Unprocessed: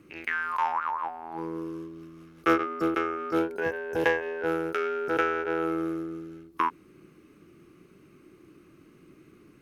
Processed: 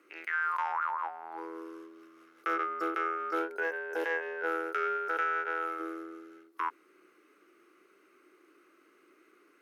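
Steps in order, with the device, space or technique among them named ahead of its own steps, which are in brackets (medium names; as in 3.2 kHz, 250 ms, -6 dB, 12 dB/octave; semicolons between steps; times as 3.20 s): laptop speaker (high-pass 360 Hz 24 dB/octave; peaking EQ 1.4 kHz +8 dB 0.47 oct; peaking EQ 2 kHz +5 dB 0.21 oct; peak limiter -17 dBFS, peak gain reduction 10 dB); 4.96–5.79 s: peaking EQ 170 Hz -5.5 dB -> -13 dB 2.7 oct; trim -5 dB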